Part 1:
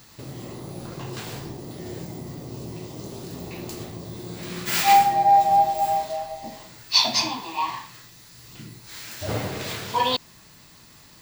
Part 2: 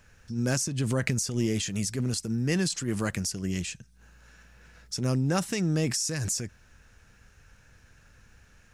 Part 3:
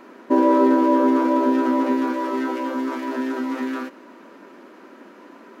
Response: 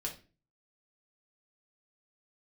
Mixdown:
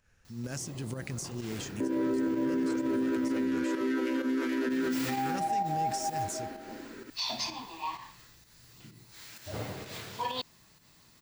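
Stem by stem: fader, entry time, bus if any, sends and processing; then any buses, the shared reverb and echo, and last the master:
-10.0 dB, 0.25 s, muted 3.45–4.7, no bus, no send, dry
-9.5 dB, 0.00 s, bus A, no send, dry
+0.5 dB, 1.50 s, bus A, no send, band shelf 830 Hz -13.5 dB 1.2 oct
bus A: 0.0 dB, limiter -17.5 dBFS, peak gain reduction 9.5 dB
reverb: off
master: pump 128 bpm, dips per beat 1, -8 dB, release 0.137 s; limiter -23 dBFS, peak gain reduction 10.5 dB

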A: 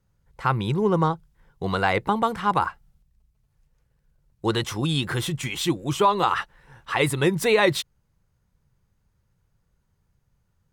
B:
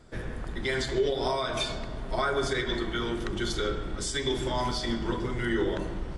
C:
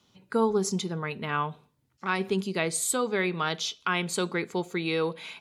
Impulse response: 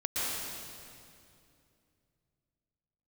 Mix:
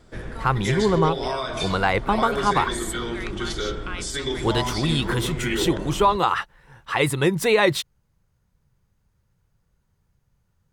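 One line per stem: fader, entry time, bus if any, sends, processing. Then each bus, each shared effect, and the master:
+1.0 dB, 0.00 s, no send, dry
+1.5 dB, 0.00 s, no send, dry
-5.5 dB, 0.00 s, no send, HPF 1100 Hz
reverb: off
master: dry

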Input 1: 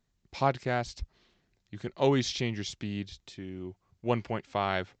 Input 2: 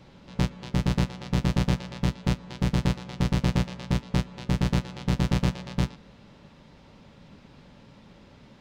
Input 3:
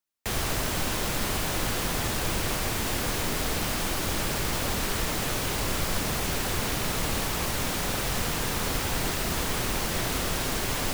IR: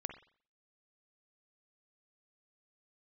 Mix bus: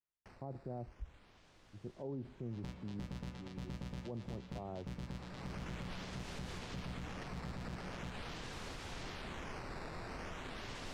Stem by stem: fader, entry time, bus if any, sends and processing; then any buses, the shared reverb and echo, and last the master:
-0.5 dB, 0.00 s, bus A, send -21 dB, Gaussian blur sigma 12 samples; three-band expander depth 100%
-13.0 dB, 2.25 s, bus A, send -8.5 dB, dry
-17.0 dB, 0.00 s, no bus, no send, decimation with a swept rate 8×, swing 160% 0.43 Hz; LPF 5700 Hz 12 dB/oct; auto duck -19 dB, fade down 0.30 s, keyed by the first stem
bus A: 0.0 dB, transient shaper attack -4 dB, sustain +3 dB; compressor 2:1, threshold -44 dBFS, peak gain reduction 14.5 dB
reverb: on, pre-delay 44 ms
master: limiter -35 dBFS, peak gain reduction 12.5 dB

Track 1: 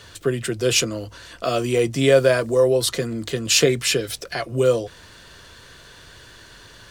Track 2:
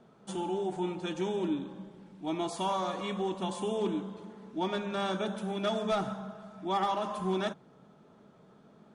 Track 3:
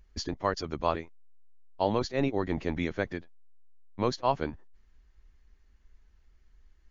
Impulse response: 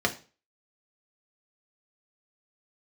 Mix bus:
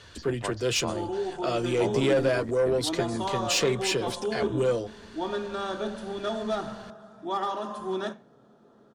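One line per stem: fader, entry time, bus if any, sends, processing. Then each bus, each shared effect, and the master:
-5.0 dB, 0.00 s, no send, Bessel low-pass 6800 Hz, order 2; soft clip -13 dBFS, distortion -14 dB
-2.5 dB, 0.60 s, send -14 dB, dry
-6.0 dB, 0.00 s, send -21 dB, high shelf 4300 Hz -10 dB; step gate ".xxx.xx.x" 96 bpm; three-band squash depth 40%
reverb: on, RT60 0.35 s, pre-delay 3 ms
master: dry

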